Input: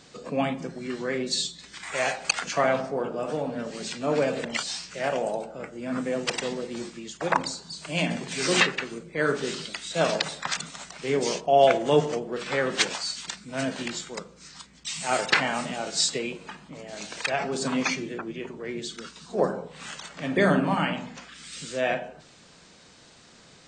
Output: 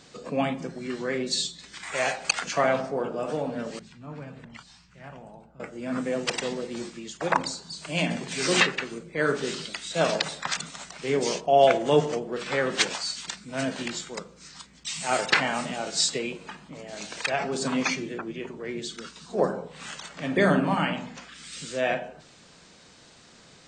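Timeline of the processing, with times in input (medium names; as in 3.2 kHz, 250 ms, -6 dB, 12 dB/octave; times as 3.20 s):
3.79–5.60 s: FFT filter 110 Hz 0 dB, 540 Hz -23 dB, 960 Hz -12 dB, 6.4 kHz -23 dB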